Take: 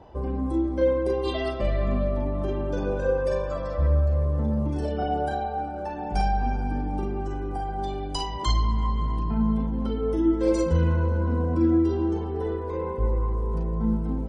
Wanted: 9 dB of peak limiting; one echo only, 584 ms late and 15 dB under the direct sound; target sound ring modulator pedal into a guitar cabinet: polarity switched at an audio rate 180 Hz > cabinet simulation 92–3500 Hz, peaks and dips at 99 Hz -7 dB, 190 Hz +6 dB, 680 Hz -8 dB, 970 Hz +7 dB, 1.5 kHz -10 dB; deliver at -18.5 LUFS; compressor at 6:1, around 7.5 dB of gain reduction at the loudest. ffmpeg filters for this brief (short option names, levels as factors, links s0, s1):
-af "acompressor=threshold=0.0562:ratio=6,alimiter=level_in=1.12:limit=0.0631:level=0:latency=1,volume=0.891,aecho=1:1:584:0.178,aeval=exprs='val(0)*sgn(sin(2*PI*180*n/s))':c=same,highpass=92,equalizer=f=99:t=q:w=4:g=-7,equalizer=f=190:t=q:w=4:g=6,equalizer=f=680:t=q:w=4:g=-8,equalizer=f=970:t=q:w=4:g=7,equalizer=f=1500:t=q:w=4:g=-10,lowpass=f=3500:w=0.5412,lowpass=f=3500:w=1.3066,volume=5.01"